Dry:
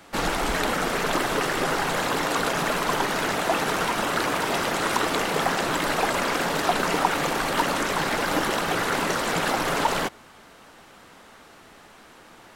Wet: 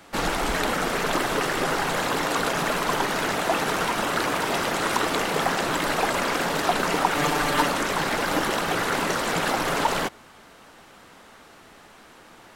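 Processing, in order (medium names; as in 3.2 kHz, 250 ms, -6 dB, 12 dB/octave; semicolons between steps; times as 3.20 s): 7.16–7.68 s: comb 6.8 ms, depth 75%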